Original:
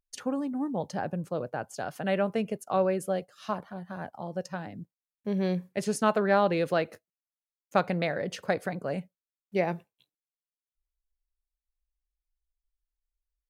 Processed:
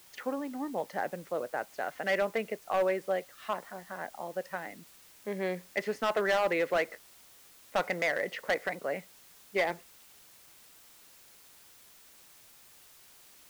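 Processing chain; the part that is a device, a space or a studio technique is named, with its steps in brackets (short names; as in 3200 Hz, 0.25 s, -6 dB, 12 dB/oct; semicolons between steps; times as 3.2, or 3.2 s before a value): drive-through speaker (BPF 370–2900 Hz; bell 2000 Hz +12 dB 0.32 oct; hard clip -22 dBFS, distortion -10 dB; white noise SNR 22 dB)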